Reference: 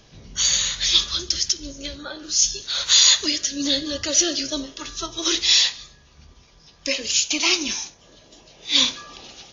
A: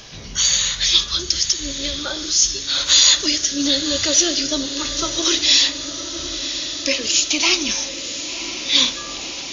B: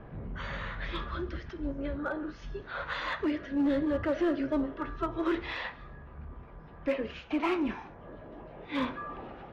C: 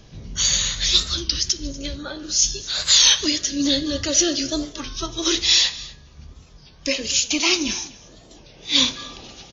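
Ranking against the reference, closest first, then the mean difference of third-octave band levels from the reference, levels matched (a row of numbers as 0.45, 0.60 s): C, A, B; 2.5, 5.0, 11.5 dB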